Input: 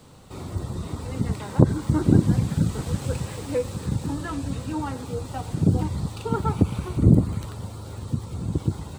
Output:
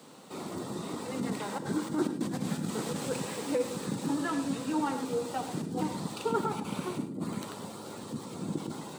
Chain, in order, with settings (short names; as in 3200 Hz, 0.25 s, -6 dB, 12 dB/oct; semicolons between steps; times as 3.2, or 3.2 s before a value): negative-ratio compressor -24 dBFS, ratio -1; HPF 190 Hz 24 dB/oct; non-linear reverb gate 0.13 s rising, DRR 9 dB; gain -3 dB